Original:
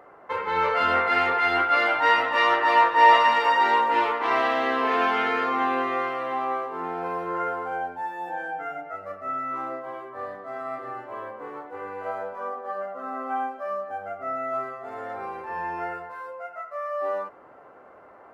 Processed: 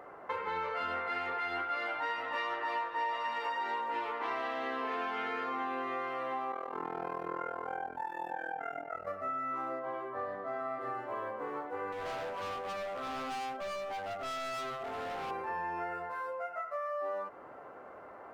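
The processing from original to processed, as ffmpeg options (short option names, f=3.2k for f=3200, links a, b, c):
-filter_complex "[0:a]asplit=3[a][b][c];[a]afade=t=out:st=6.51:d=0.02[d];[b]tremolo=f=41:d=0.919,afade=t=in:st=6.51:d=0.02,afade=t=out:st=9.06:d=0.02[e];[c]afade=t=in:st=9.06:d=0.02[f];[d][e][f]amix=inputs=3:normalize=0,asettb=1/sr,asplit=3[g][h][i];[g]atrim=end=9.794[j];[h]atrim=start=9.79:end=10.81,asetpts=PTS-STARTPTS,afade=t=in:d=0.004:c=qsin,afade=t=out:st=1.016:d=0.004:c=qsin,highshelf=f=5k:g=-9.5[k];[i]atrim=start=10.806[l];[j][k]acrossfade=d=0.004:c1=hsin:c2=qsin[m];[m][l]acrossfade=d=0.004:c1=qsin:c2=hsin,asettb=1/sr,asplit=3[n][o][p];[n]atrim=end=11.924[q];[o]atrim=start=11.92:end=15.31,asetpts=PTS-STARTPTS,afade=t=in:d=0.004:c=qsin,afade=t=out:st=3.386:d=0.004:c=qsin,asoftclip=type=hard:threshold=-36.5dB[r];[p]atrim=start=15.306[s];[q][r]acrossfade=d=0.004:c1=hsin:c2=qsin[t];[t][s]acrossfade=d=0.004:c1=qsin:c2=hsin,acompressor=threshold=-34dB:ratio=6"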